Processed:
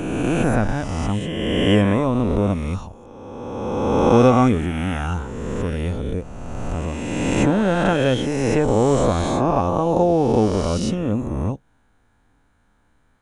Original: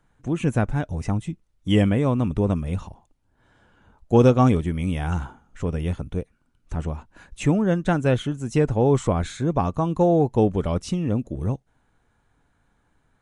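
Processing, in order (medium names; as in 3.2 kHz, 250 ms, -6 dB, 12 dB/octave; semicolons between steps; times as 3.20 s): reverse spectral sustain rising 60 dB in 2.20 s; band-stop 8 kHz, Q 25; on a send: reverberation, pre-delay 3 ms, DRR 23.5 dB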